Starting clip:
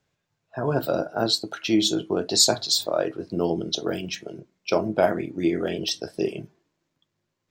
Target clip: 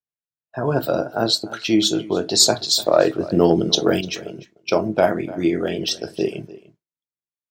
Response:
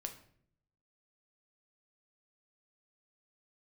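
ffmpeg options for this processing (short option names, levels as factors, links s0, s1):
-filter_complex "[0:a]asettb=1/sr,asplit=3[s0][s1][s2];[s0]atrim=end=2.864[s3];[s1]atrim=start=2.86:end=4.01,asetpts=PTS-STARTPTS,afade=t=in:d=0.004:c=qsin,afade=t=out:st=1.146:d=0.004:c=qsin,acontrast=50[s4];[s2]atrim=start=4.006[s5];[s3][s4]acrossfade=d=0.004:c1=hsin:c2=qsin[s6];[s6][s5]acrossfade=d=0.004:c1=qsin:c2=hsin,asplit=2[s7][s8];[s8]adelay=297.4,volume=0.126,highshelf=f=4000:g=-6.69[s9];[s7][s9]amix=inputs=2:normalize=0,agate=range=0.0224:threshold=0.00447:ratio=3:detection=peak,volume=1.5"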